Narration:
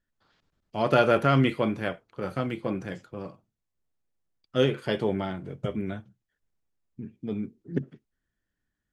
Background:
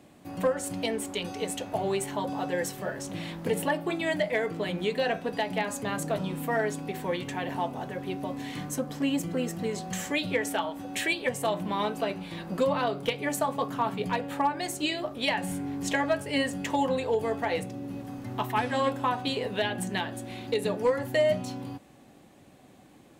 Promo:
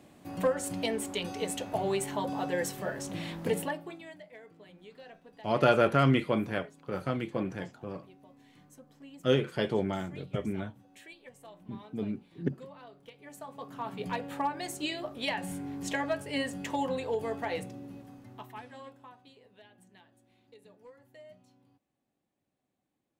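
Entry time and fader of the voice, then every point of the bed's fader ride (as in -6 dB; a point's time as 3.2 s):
4.70 s, -2.5 dB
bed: 3.53 s -1.5 dB
4.21 s -23 dB
13.1 s -23 dB
14.08 s -5 dB
17.66 s -5 dB
19.36 s -28.5 dB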